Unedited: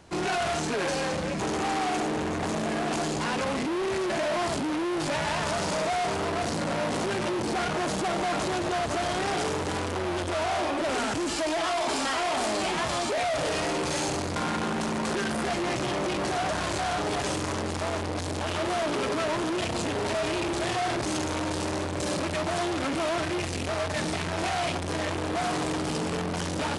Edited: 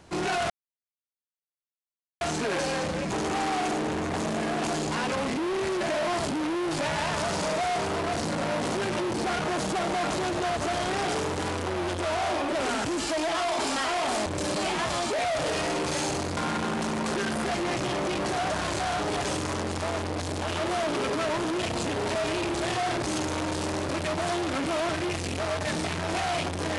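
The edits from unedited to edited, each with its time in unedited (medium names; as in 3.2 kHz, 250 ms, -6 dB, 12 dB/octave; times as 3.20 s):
0.50 s: insert silence 1.71 s
21.88–22.18 s: move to 12.55 s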